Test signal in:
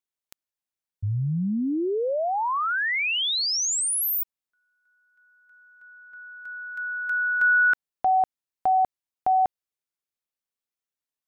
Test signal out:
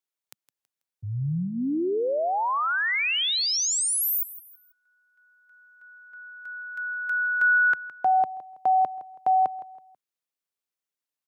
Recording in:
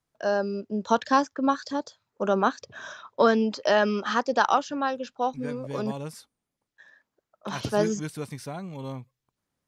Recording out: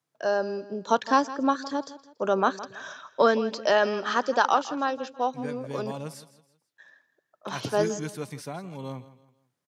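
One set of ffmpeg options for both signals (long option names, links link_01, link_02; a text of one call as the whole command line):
ffmpeg -i in.wav -filter_complex "[0:a]highpass=frequency=120:width=0.5412,highpass=frequency=120:width=1.3066,equalizer=frequency=210:width_type=o:width=0.23:gain=-8,asplit=2[link_01][link_02];[link_02]aecho=0:1:163|326|489:0.158|0.0555|0.0194[link_03];[link_01][link_03]amix=inputs=2:normalize=0" out.wav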